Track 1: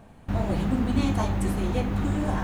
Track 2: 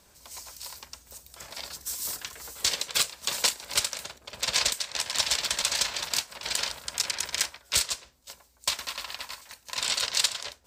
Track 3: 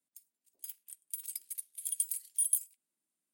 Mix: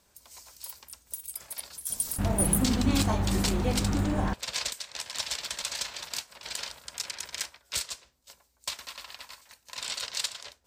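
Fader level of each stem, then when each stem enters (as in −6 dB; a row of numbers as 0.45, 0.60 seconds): −1.5, −7.0, +2.0 decibels; 1.90, 0.00, 0.00 seconds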